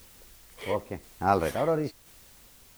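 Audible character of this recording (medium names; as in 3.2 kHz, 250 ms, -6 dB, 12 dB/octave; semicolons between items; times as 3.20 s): a quantiser's noise floor 10-bit, dither triangular; tremolo saw down 0.97 Hz, depth 35%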